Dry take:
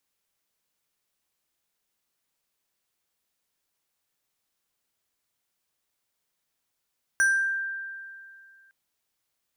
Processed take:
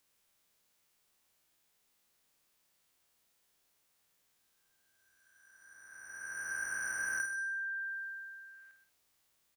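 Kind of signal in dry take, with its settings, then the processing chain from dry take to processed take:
FM tone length 1.51 s, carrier 1.58 kHz, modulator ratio 4.72, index 0.58, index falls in 0.61 s exponential, decay 2.31 s, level -17 dB
reverse spectral sustain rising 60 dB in 2.36 s; compression 6:1, threshold -36 dBFS; on a send: multi-tap echo 51/129/181 ms -8/-11.5/-18.5 dB

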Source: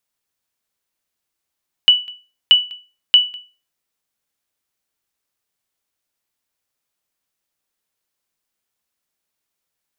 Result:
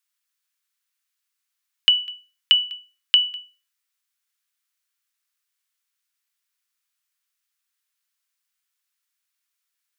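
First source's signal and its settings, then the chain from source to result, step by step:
sonar ping 2.96 kHz, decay 0.32 s, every 0.63 s, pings 3, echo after 0.20 s, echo -25.5 dB -2 dBFS
high-pass 1.2 kHz 24 dB/octave; compression, threshold -12 dBFS

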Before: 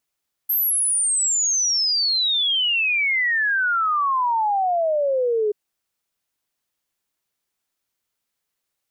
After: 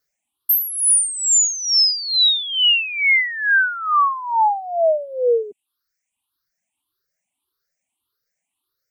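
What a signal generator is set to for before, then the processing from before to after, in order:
log sweep 13 kHz -> 410 Hz 5.03 s -17.5 dBFS
drifting ripple filter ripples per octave 0.58, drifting +1.7 Hz, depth 15 dB; reverb removal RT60 1.1 s; wow and flutter 15 cents

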